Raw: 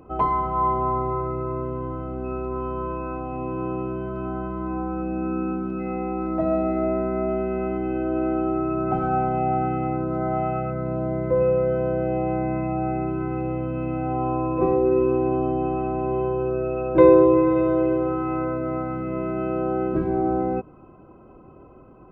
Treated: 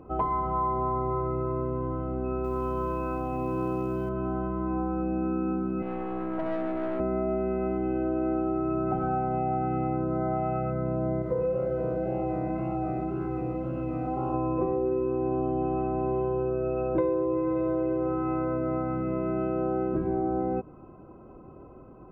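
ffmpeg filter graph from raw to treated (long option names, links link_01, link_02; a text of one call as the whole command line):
ffmpeg -i in.wav -filter_complex "[0:a]asettb=1/sr,asplit=3[link_01][link_02][link_03];[link_01]atrim=end=2.444[link_04];[link_02]atrim=start=2.44:end=4.09,asetpts=PTS-STARTPTS,afade=type=in:duration=0.004:curve=qsin,afade=type=out:start_time=1.646:duration=0.004:curve=qsin,highshelf=frequency=2800:gain=10,acrusher=bits=7:mode=log:mix=0:aa=0.000001[link_05];[link_03]atrim=start=4.086[link_06];[link_04][link_05]acrossfade=duration=0.004:curve1=hsin:curve2=qsin[link_07];[link_07][link_06]acrossfade=duration=0.004:curve1=qsin:curve2=hsin,asettb=1/sr,asplit=3[link_08][link_09][link_10];[link_08]atrim=end=5.824[link_11];[link_09]atrim=start=5.82:end=7,asetpts=PTS-STARTPTS,afade=type=in:duration=0.004:curve=qsin,afade=type=out:start_time=1.176:duration=0.004:curve=qsin,highpass=210,aeval=exprs='(tanh(17.8*val(0)+0.65)-tanh(0.65))/17.8':channel_layout=same[link_12];[link_10]atrim=start=6.996[link_13];[link_11][link_12]acrossfade=duration=0.004:curve1=hsin:curve2=qsin[link_14];[link_14][link_13]acrossfade=duration=0.004:curve1=qsin:curve2=hsin,asettb=1/sr,asplit=3[link_15][link_16][link_17];[link_15]atrim=end=11.224[link_18];[link_16]atrim=start=11.22:end=14.34,asetpts=PTS-STARTPTS,afade=type=in:duration=0.004:curve=qsin,afade=type=out:start_time=3.116:duration=0.004:curve=qsin,flanger=delay=2.2:depth=9.8:regen=-35:speed=1.9:shape=sinusoidal,aeval=exprs='sgn(val(0))*max(abs(val(0))-0.00119,0)':channel_layout=same[link_19];[link_17]atrim=start=14.336[link_20];[link_18][link_19]acrossfade=duration=0.004:curve1=hsin:curve2=qsin[link_21];[link_21][link_20]acrossfade=duration=0.004:curve1=qsin:curve2=hsin,highshelf=frequency=2500:gain=-11,acompressor=threshold=-24dB:ratio=6" out.wav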